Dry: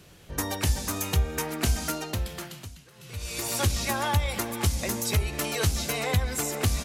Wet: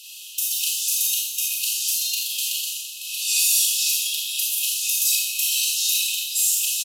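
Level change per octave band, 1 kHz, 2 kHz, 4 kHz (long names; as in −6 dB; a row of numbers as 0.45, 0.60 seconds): below −40 dB, +2.0 dB, +11.0 dB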